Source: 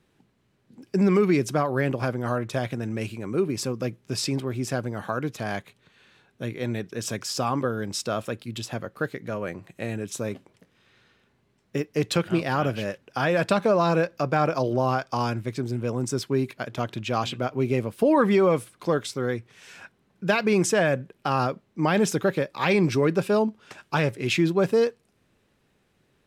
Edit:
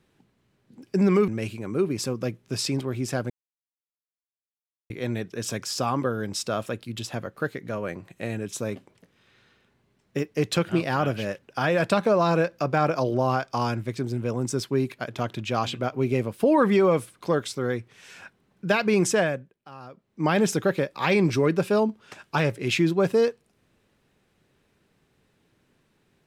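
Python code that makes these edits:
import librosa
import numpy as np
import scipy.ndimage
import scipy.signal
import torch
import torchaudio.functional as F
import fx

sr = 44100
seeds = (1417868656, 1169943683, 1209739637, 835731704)

y = fx.edit(x, sr, fx.cut(start_s=1.28, length_s=1.59),
    fx.silence(start_s=4.89, length_s=1.6),
    fx.fade_down_up(start_s=20.78, length_s=1.07, db=-19.5, fade_s=0.45, curve='qua'), tone=tone)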